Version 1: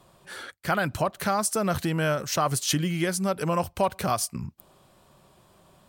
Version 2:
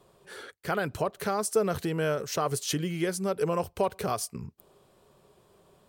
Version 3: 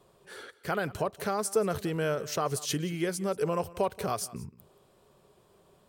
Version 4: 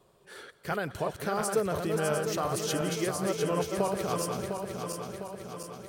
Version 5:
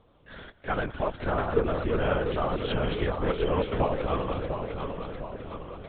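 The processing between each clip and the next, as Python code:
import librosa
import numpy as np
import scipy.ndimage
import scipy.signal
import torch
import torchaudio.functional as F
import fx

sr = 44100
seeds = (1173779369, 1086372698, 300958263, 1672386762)

y1 = fx.peak_eq(x, sr, hz=430.0, db=13.0, octaves=0.39)
y1 = y1 * 10.0 ** (-5.5 / 20.0)
y2 = y1 + 10.0 ** (-19.5 / 20.0) * np.pad(y1, (int(179 * sr / 1000.0), 0))[:len(y1)]
y2 = y2 * 10.0 ** (-1.5 / 20.0)
y3 = fx.reverse_delay_fb(y2, sr, ms=352, feedback_pct=75, wet_db=-4.5)
y3 = y3 * 10.0 ** (-1.5 / 20.0)
y4 = fx.lpc_vocoder(y3, sr, seeds[0], excitation='whisper', order=10)
y4 = y4 * 10.0 ** (3.0 / 20.0)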